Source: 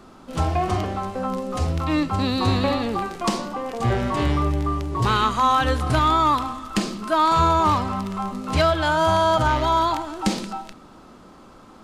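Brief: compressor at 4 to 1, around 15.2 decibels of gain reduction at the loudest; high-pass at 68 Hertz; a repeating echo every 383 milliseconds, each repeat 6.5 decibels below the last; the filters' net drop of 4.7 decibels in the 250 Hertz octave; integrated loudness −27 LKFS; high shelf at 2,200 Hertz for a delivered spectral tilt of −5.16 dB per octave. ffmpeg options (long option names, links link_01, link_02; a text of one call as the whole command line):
ffmpeg -i in.wav -af "highpass=68,equalizer=frequency=250:width_type=o:gain=-6,highshelf=frequency=2200:gain=-7.5,acompressor=threshold=-36dB:ratio=4,aecho=1:1:383|766|1149|1532|1915|2298:0.473|0.222|0.105|0.0491|0.0231|0.0109,volume=9dB" out.wav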